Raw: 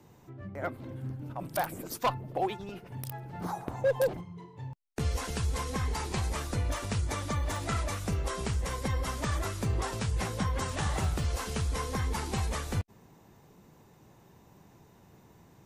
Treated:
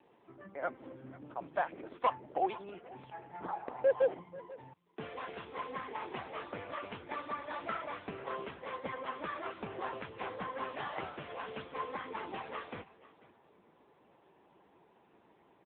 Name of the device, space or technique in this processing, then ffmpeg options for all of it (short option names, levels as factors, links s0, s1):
satellite phone: -af "highpass=340,lowpass=3300,aecho=1:1:490:0.106" -ar 8000 -c:a libopencore_amrnb -b:a 6700